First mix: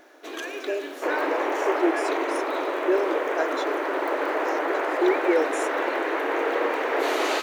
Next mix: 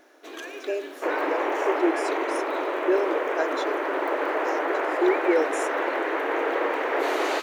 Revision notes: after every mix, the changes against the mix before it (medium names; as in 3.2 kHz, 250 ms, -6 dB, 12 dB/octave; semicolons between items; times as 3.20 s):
first sound -4.0 dB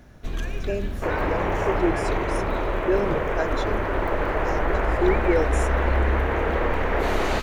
master: remove brick-wall FIR high-pass 270 Hz